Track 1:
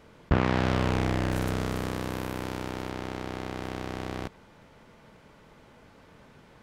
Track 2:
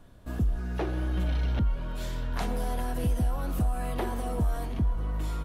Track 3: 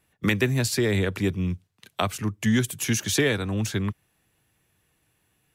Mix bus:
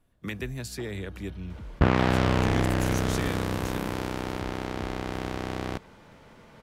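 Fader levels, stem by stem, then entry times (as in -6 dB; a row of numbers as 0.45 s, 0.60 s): +2.5 dB, -15.5 dB, -12.0 dB; 1.50 s, 0.00 s, 0.00 s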